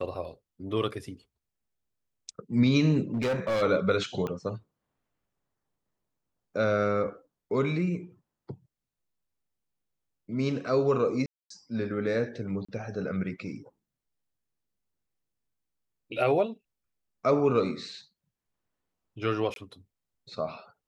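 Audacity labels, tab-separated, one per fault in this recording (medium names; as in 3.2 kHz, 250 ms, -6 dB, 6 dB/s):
3.140000	3.630000	clipped -24.5 dBFS
4.270000	4.270000	pop -21 dBFS
11.260000	11.500000	dropout 244 ms
12.650000	12.690000	dropout 35 ms
19.540000	19.560000	dropout 22 ms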